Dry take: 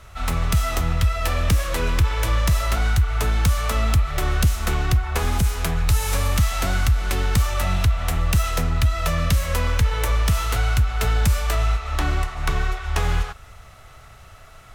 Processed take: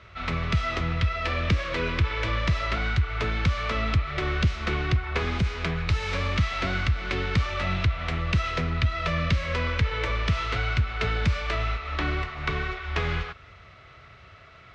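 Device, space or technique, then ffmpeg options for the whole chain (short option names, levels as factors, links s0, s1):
guitar cabinet: -af "highpass=78,equalizer=f=370:t=q:w=4:g=3,equalizer=f=810:t=q:w=4:g=-8,equalizer=f=2200:t=q:w=4:g=5,lowpass=f=4500:w=0.5412,lowpass=f=4500:w=1.3066,volume=0.794"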